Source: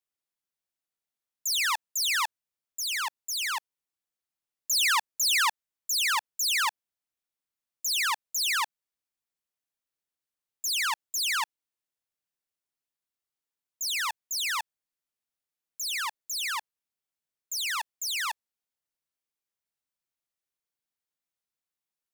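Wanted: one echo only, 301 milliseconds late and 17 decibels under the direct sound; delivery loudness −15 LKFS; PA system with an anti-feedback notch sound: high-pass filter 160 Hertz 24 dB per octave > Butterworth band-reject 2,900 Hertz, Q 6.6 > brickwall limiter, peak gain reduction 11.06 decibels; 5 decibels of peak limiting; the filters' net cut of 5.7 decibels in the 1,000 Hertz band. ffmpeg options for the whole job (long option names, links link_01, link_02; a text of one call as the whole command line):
ffmpeg -i in.wav -af "equalizer=frequency=1000:width_type=o:gain=-7,alimiter=limit=-22dB:level=0:latency=1,highpass=frequency=160:width=0.5412,highpass=frequency=160:width=1.3066,asuperstop=centerf=2900:order=8:qfactor=6.6,aecho=1:1:301:0.141,volume=22.5dB,alimiter=limit=-7.5dB:level=0:latency=1" out.wav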